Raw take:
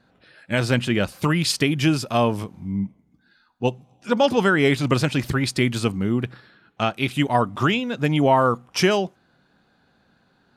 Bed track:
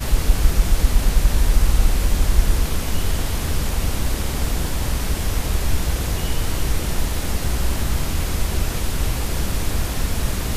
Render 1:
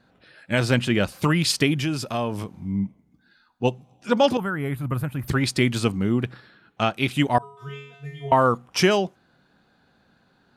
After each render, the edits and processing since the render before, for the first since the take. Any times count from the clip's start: 1.80–2.60 s: compression 2:1, threshold -26 dBFS; 4.37–5.28 s: FFT filter 100 Hz 0 dB, 200 Hz -7 dB, 390 Hz -13 dB, 1.3 kHz -7 dB, 5.4 kHz -28 dB, 7.9 kHz -17 dB, 12 kHz +3 dB; 7.38–8.32 s: feedback comb 140 Hz, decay 0.77 s, harmonics odd, mix 100%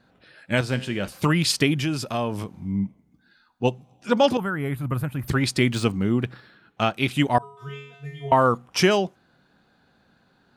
0.61–1.08 s: feedback comb 65 Hz, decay 0.74 s; 5.72–6.95 s: median filter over 3 samples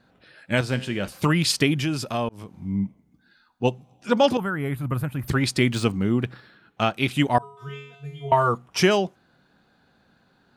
2.29–2.78 s: fade in equal-power; 7.95–8.82 s: comb of notches 260 Hz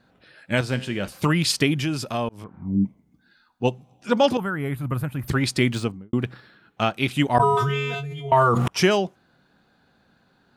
2.44–2.85 s: touch-sensitive low-pass 310–1800 Hz down, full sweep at -21.5 dBFS; 5.69–6.13 s: studio fade out; 7.34–8.68 s: decay stretcher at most 22 dB/s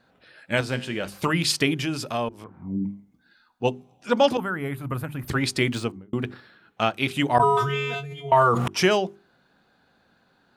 tone controls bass -4 dB, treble -1 dB; hum notches 50/100/150/200/250/300/350/400 Hz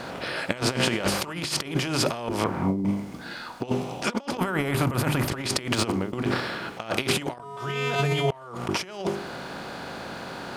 spectral levelling over time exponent 0.6; compressor with a negative ratio -26 dBFS, ratio -0.5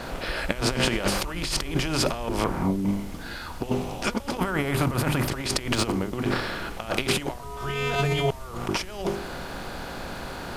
add bed track -20 dB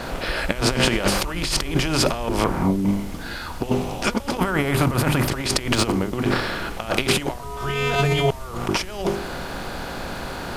trim +4.5 dB; peak limiter -2 dBFS, peak gain reduction 1.5 dB

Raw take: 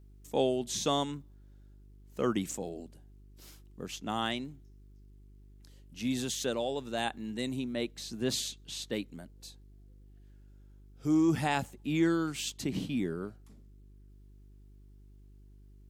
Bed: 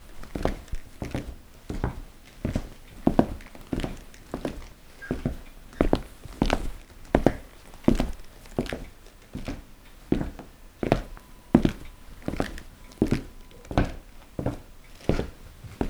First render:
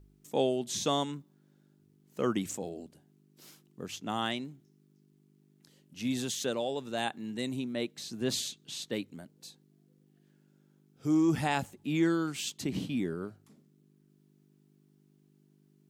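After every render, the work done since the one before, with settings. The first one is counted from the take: de-hum 50 Hz, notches 2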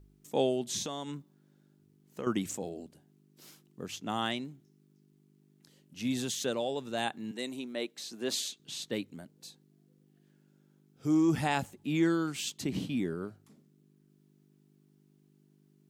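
0.82–2.27 s: compression 5:1, threshold -34 dBFS; 7.31–8.60 s: high-pass 310 Hz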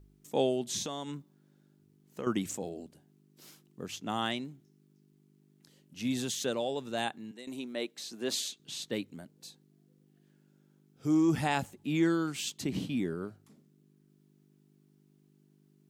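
7.01–7.47 s: fade out, to -13.5 dB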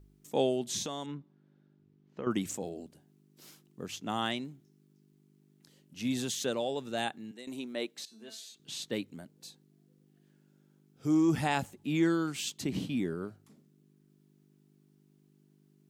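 1.06–2.31 s: distance through air 220 m; 6.82–7.40 s: band-stop 1 kHz, Q 8.3; 8.05–8.55 s: feedback comb 220 Hz, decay 0.39 s, mix 90%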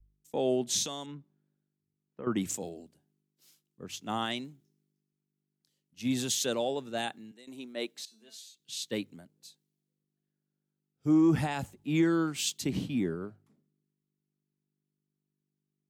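peak limiter -21.5 dBFS, peak gain reduction 7 dB; three bands expanded up and down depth 70%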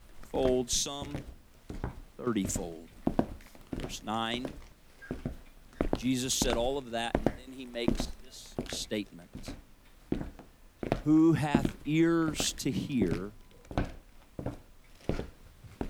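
add bed -8.5 dB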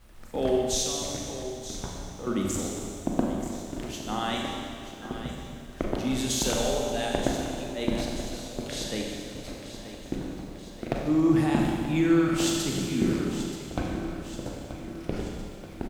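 on a send: feedback delay 931 ms, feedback 55%, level -12 dB; on the sum: Schroeder reverb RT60 2.2 s, combs from 30 ms, DRR -1 dB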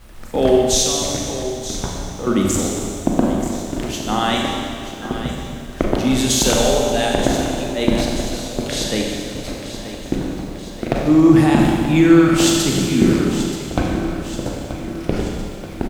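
trim +11 dB; peak limiter -1 dBFS, peak gain reduction 3 dB

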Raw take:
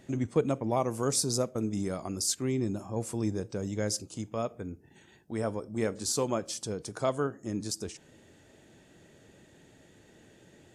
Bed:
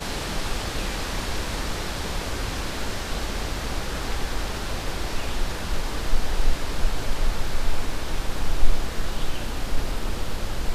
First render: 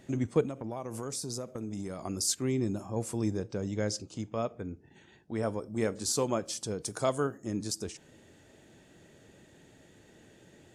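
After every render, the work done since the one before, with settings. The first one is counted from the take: 0.45–2.03 s: compression, threshold -33 dBFS; 3.37–5.43 s: low-pass 5.9 kHz; 6.84–7.38 s: treble shelf 6.9 kHz +11.5 dB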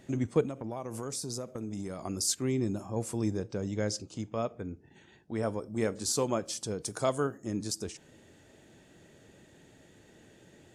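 no audible change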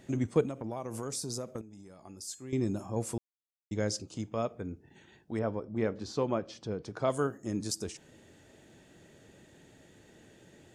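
1.61–2.53 s: feedback comb 850 Hz, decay 0.28 s, mix 80%; 3.18–3.71 s: mute; 5.39–7.10 s: distance through air 240 m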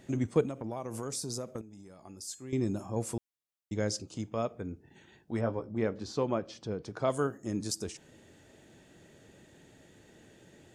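5.31–5.72 s: doubling 17 ms -5.5 dB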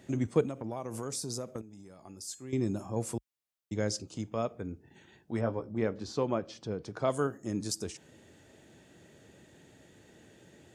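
high-pass 49 Hz 24 dB/octave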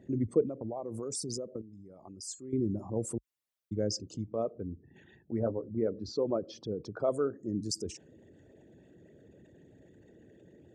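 resonances exaggerated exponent 2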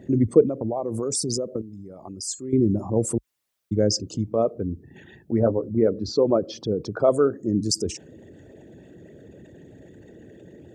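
trim +11 dB

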